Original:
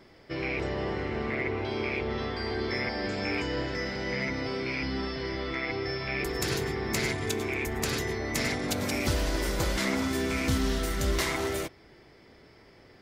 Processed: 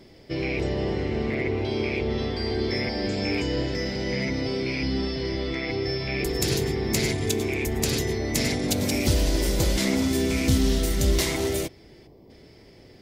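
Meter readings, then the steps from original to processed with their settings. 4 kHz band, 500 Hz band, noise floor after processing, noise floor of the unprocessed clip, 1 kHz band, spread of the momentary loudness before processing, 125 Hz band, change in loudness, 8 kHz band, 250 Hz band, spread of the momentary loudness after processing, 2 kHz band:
+5.0 dB, +4.5 dB, −51 dBFS, −56 dBFS, −1.0 dB, 4 LU, +7.0 dB, +4.5 dB, +6.5 dB, +6.0 dB, 5 LU, 0.0 dB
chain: parametric band 1,300 Hz −12.5 dB 1.5 octaves
gain on a spectral selection 0:12.07–0:12.30, 1,200–12,000 Hz −14 dB
in parallel at −6 dB: asymmetric clip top −22.5 dBFS
on the sum: level +3.5 dB

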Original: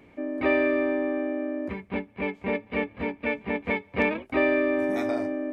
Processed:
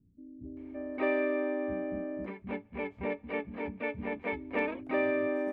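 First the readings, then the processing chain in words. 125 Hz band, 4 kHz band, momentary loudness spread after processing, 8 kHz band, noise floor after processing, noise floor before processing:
−6.5 dB, −10.5 dB, 12 LU, can't be measured, −59 dBFS, −55 dBFS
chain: high-shelf EQ 3,600 Hz −11.5 dB
multiband delay without the direct sound lows, highs 570 ms, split 220 Hz
level −5 dB

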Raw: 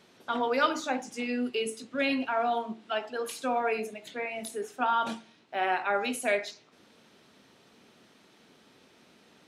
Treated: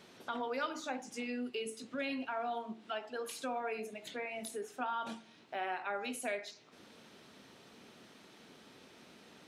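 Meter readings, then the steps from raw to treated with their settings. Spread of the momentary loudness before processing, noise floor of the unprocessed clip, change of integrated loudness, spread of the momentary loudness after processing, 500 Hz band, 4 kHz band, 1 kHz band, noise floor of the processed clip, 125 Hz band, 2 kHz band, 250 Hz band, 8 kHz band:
8 LU, −61 dBFS, −9.5 dB, 19 LU, −9.0 dB, −8.5 dB, −10.0 dB, −60 dBFS, can't be measured, −9.5 dB, −8.5 dB, −6.0 dB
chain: downward compressor 2 to 1, threshold −46 dBFS, peak gain reduction 14.5 dB
level +1.5 dB

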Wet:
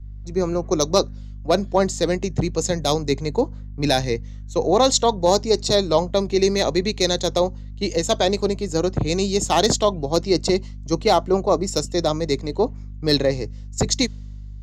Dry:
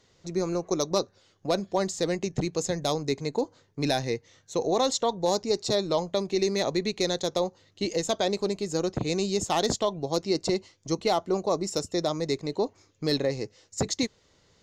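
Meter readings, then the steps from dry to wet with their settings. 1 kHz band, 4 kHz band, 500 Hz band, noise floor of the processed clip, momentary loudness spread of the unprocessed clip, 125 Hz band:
+7.5 dB, +7.5 dB, +7.0 dB, −34 dBFS, 7 LU, +8.0 dB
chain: mains hum 50 Hz, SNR 11 dB
multiband upward and downward expander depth 70%
level +7 dB

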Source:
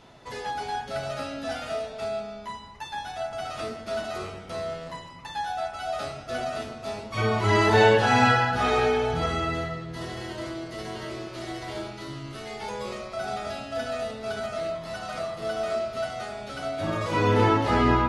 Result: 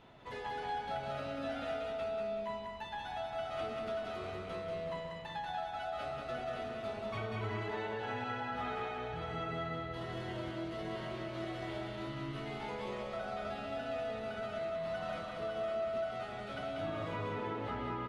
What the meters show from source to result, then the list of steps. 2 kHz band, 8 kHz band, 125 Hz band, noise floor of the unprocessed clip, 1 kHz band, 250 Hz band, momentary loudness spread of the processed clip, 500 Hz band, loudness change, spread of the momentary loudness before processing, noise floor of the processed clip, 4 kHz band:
−14.0 dB, below −15 dB, −14.0 dB, −42 dBFS, −12.5 dB, −13.0 dB, 3 LU, −10.5 dB, −12.0 dB, 15 LU, −44 dBFS, −13.0 dB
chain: flat-topped bell 7,400 Hz −11 dB
downward compressor 12 to 1, threshold −31 dBFS, peak gain reduction 18 dB
on a send: repeating echo 188 ms, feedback 46%, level −3 dB
on the sum: level −6.5 dB

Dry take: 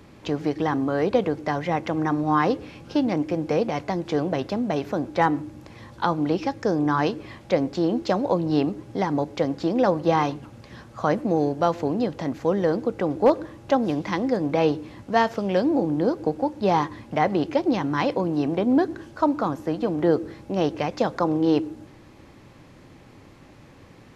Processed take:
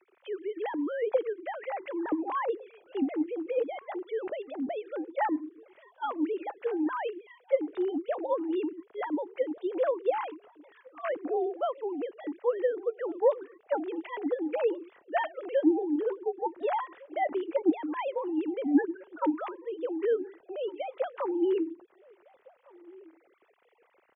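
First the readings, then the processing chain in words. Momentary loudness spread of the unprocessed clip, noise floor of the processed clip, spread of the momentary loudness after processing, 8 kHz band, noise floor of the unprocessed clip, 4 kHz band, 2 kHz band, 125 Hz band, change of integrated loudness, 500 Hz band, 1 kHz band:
6 LU, −66 dBFS, 10 LU, can't be measured, −49 dBFS, below −10 dB, −9.0 dB, below −35 dB, −7.5 dB, −5.5 dB, −9.0 dB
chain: three sine waves on the formant tracks
slap from a distant wall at 250 metres, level −23 dB
level −7.5 dB

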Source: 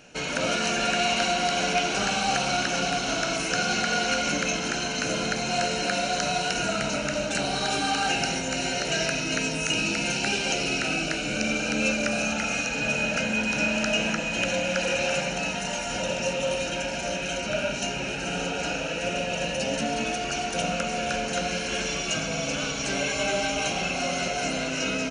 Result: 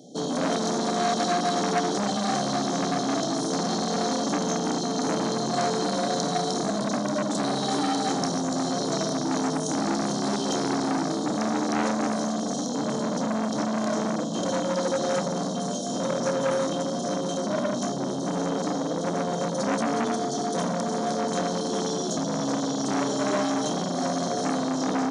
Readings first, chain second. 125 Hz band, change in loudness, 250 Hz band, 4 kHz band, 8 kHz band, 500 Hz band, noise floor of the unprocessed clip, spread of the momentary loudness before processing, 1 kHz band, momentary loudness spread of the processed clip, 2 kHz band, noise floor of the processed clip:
+2.0 dB, −0.5 dB, +5.5 dB, −5.5 dB, −2.5 dB, +2.0 dB, −31 dBFS, 4 LU, +1.5 dB, 3 LU, −10.0 dB, −29 dBFS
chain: high-pass filter 130 Hz 24 dB per octave
parametric band 260 Hz +11 dB 1.6 octaves
brick-wall band-stop 830–3,100 Hz
flutter between parallel walls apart 5.1 metres, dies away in 0.22 s
saturating transformer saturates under 1,300 Hz

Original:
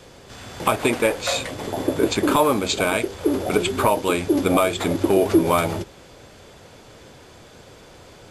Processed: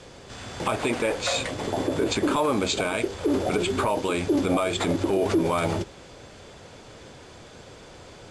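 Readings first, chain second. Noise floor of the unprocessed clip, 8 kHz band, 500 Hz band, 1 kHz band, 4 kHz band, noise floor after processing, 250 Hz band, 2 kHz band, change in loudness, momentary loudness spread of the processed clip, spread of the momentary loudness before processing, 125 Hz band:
−47 dBFS, −4.0 dB, −4.5 dB, −5.0 dB, −2.5 dB, −47 dBFS, −4.0 dB, −4.0 dB, −4.0 dB, 6 LU, 8 LU, −2.5 dB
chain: low-pass filter 9,400 Hz 24 dB per octave
brickwall limiter −14.5 dBFS, peak gain reduction 8.5 dB

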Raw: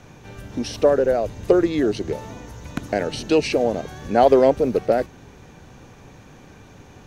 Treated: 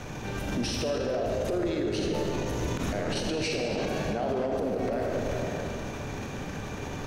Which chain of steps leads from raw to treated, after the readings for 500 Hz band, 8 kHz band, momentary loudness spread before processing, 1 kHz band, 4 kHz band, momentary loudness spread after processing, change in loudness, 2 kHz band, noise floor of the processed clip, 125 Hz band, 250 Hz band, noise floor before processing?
−10.5 dB, 0.0 dB, 17 LU, −10.0 dB, −1.5 dB, 7 LU, −10.5 dB, −3.0 dB, −37 dBFS, 0.0 dB, −7.0 dB, −47 dBFS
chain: transient designer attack −2 dB, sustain +10 dB
downward compressor 3 to 1, threshold −34 dBFS, peak gain reduction 17.5 dB
comb and all-pass reverb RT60 2.9 s, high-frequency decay 0.75×, pre-delay 5 ms, DRR −0.5 dB
brickwall limiter −26.5 dBFS, peak gain reduction 11.5 dB
level +5.5 dB

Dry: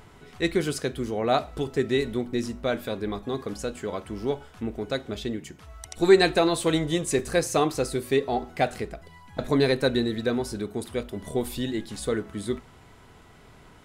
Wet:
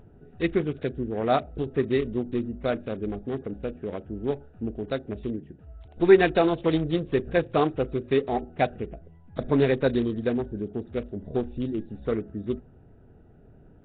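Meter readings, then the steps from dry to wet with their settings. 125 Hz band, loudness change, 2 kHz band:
+1.0 dB, 0.0 dB, −2.0 dB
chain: adaptive Wiener filter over 41 samples
level +1 dB
Nellymoser 16 kbit/s 8,000 Hz

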